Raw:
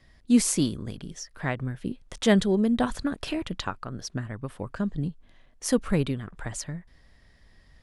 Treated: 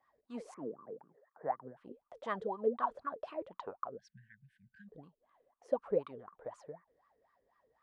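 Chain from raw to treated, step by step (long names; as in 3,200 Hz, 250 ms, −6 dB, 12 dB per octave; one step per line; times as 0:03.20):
0:00.54–0:01.77: Chebyshev band-pass filter 130–1,900 Hz, order 4
0:03.98–0:04.88: time-frequency box erased 230–1,500 Hz
LFO wah 4 Hz 430–1,200 Hz, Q 17
level +9.5 dB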